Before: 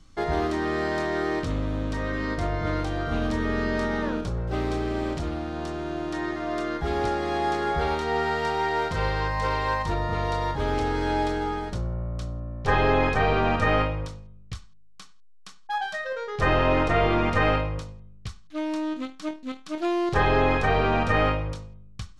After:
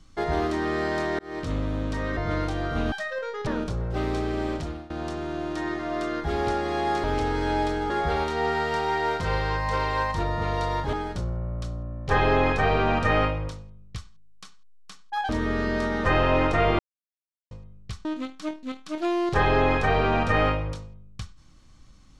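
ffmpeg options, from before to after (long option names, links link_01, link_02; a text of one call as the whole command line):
ffmpeg -i in.wav -filter_complex "[0:a]asplit=14[link_01][link_02][link_03][link_04][link_05][link_06][link_07][link_08][link_09][link_10][link_11][link_12][link_13][link_14];[link_01]atrim=end=1.19,asetpts=PTS-STARTPTS,afade=type=out:start_time=1.186:duration=0.004:curve=hsin[link_15];[link_02]atrim=start=1.19:end=2.172,asetpts=PTS-STARTPTS,afade=type=in:duration=0.34[link_16];[link_03]atrim=start=2.528:end=3.282[link_17];[link_04]atrim=start=15.858:end=16.412[link_18];[link_05]atrim=start=4.038:end=5.47,asetpts=PTS-STARTPTS,afade=type=out:start_time=0.962:duration=0.47:curve=qsin:silence=0.11885[link_19];[link_06]atrim=start=5.47:end=7.612,asetpts=PTS-STARTPTS,afade=type=in:duration=0.004:curve=hsin:silence=0.11885[link_20];[link_07]atrim=start=10.638:end=11.502[link_21];[link_08]atrim=start=7.608:end=10.642[link_22];[link_09]atrim=start=11.498:end=15.862[link_23];[link_10]atrim=start=3.278:end=4.042[link_24];[link_11]atrim=start=16.408:end=17.15,asetpts=PTS-STARTPTS,afade=type=out:start_time=0.738:duration=0.004:curve=hsin[link_25];[link_12]atrim=start=17.15:end=17.87,asetpts=PTS-STARTPTS,volume=0[link_26];[link_13]atrim=start=17.87:end=18.412,asetpts=PTS-STARTPTS,afade=type=in:duration=0.004:curve=hsin[link_27];[link_14]atrim=start=18.848[link_28];[link_15][link_16]concat=n=2:v=0:a=1[link_29];[link_29][link_17]acrossfade=duration=0.004:curve1=hsin:curve2=hsin[link_30];[link_30][link_18]acrossfade=duration=0.004:curve1=hsin:curve2=hsin[link_31];[link_19][link_20]concat=n=2:v=0:a=1[link_32];[link_31][link_32]acrossfade=duration=0.004:curve1=hsin:curve2=hsin[link_33];[link_33][link_21]acrossfade=duration=0.004:curve1=hsin:curve2=hsin[link_34];[link_34][link_22]acrossfade=duration=0.004:curve1=hsin:curve2=hsin[link_35];[link_35][link_23]acrossfade=duration=0.004:curve1=hsin:curve2=hsin[link_36];[link_36][link_24]acrossfade=duration=0.004:curve1=hsin:curve2=hsin[link_37];[link_25][link_26][link_27]concat=n=3:v=0:a=1[link_38];[link_37][link_38]acrossfade=duration=0.004:curve1=hsin:curve2=hsin[link_39];[link_39][link_28]acrossfade=duration=0.004:curve1=hsin:curve2=hsin" out.wav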